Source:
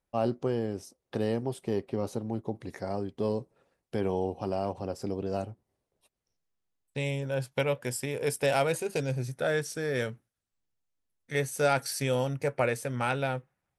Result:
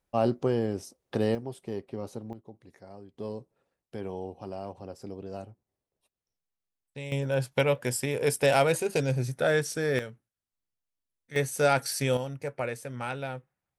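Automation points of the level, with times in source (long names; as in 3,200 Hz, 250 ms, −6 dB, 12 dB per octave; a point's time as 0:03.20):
+3 dB
from 0:01.35 −5 dB
from 0:02.33 −14 dB
from 0:03.14 −7 dB
from 0:07.12 +3.5 dB
from 0:09.99 −6.5 dB
from 0:11.36 +2 dB
from 0:12.17 −5 dB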